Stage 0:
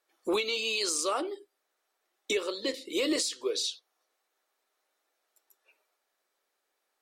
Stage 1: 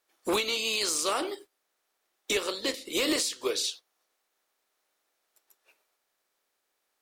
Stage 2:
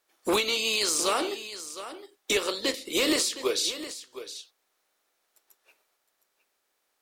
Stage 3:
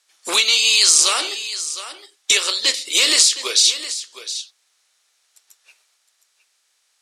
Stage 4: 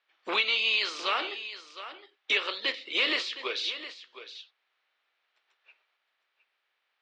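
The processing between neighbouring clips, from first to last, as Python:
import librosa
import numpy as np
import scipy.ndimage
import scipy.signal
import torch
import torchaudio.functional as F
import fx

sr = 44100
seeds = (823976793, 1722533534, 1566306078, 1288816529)

y1 = fx.spec_flatten(x, sr, power=0.69)
y1 = np.clip(10.0 ** (21.5 / 20.0) * y1, -1.0, 1.0) / 10.0 ** (21.5 / 20.0)
y1 = y1 * 10.0 ** (1.5 / 20.0)
y2 = y1 + 10.0 ** (-13.0 / 20.0) * np.pad(y1, (int(713 * sr / 1000.0), 0))[:len(y1)]
y2 = y2 * 10.0 ** (2.5 / 20.0)
y3 = fx.weighting(y2, sr, curve='ITU-R 468')
y3 = y3 * 10.0 ** (3.0 / 20.0)
y4 = scipy.signal.sosfilt(scipy.signal.butter(4, 3000.0, 'lowpass', fs=sr, output='sos'), y3)
y4 = y4 * 10.0 ** (-5.5 / 20.0)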